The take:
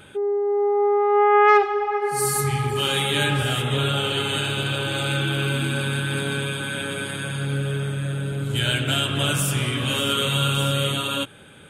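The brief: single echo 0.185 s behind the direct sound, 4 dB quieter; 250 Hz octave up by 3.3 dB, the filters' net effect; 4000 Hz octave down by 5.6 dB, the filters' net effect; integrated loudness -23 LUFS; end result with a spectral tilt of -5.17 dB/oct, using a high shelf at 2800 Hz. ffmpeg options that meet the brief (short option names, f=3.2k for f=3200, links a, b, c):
-af "equalizer=f=250:t=o:g=5,highshelf=f=2.8k:g=-3.5,equalizer=f=4k:t=o:g=-5,aecho=1:1:185:0.631,volume=-2dB"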